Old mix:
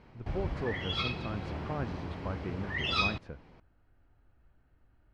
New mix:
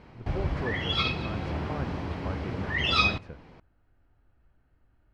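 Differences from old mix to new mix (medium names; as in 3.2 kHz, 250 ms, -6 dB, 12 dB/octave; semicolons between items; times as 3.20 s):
background +4.5 dB; reverb: on, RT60 0.45 s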